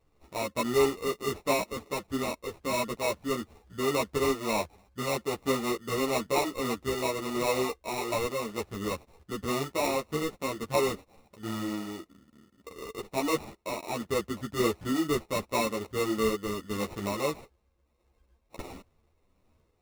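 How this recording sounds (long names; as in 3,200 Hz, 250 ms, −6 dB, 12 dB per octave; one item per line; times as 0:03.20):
tremolo triangle 1.5 Hz, depth 35%
aliases and images of a low sample rate 1,600 Hz, jitter 0%
a shimmering, thickened sound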